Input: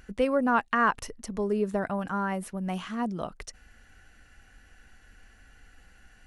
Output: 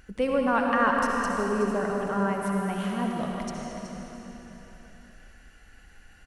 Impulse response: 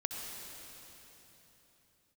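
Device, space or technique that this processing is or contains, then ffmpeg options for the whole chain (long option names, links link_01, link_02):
cave: -filter_complex "[0:a]aecho=1:1:373:0.282[link_01];[1:a]atrim=start_sample=2205[link_02];[link_01][link_02]afir=irnorm=-1:irlink=0"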